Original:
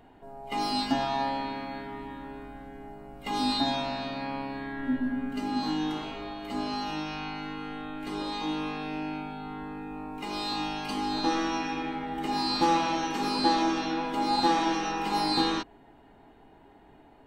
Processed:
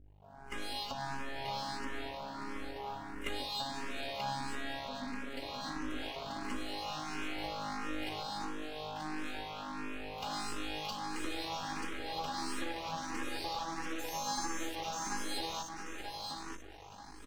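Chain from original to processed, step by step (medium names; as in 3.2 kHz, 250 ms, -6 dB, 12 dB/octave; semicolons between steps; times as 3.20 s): fade-in on the opening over 1.12 s; 13.98–14.74 s: whistle 6.3 kHz -31 dBFS; compression 12:1, threshold -35 dBFS, peak gain reduction 16.5 dB; bass shelf 300 Hz -9 dB; feedback delay 934 ms, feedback 29%, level -4.5 dB; hum 50 Hz, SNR 18 dB; 8.23–8.96 s: peaking EQ 2.1 kHz -11 dB 0.74 oct; half-wave rectifier; barber-pole phaser +1.5 Hz; trim +7.5 dB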